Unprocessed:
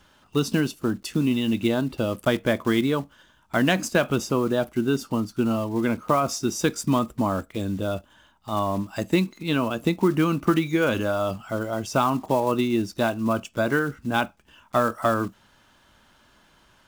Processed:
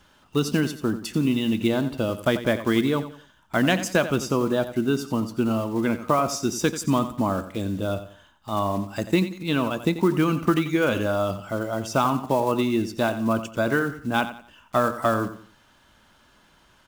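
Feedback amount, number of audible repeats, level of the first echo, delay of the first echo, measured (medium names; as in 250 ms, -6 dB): 33%, 3, -12.5 dB, 89 ms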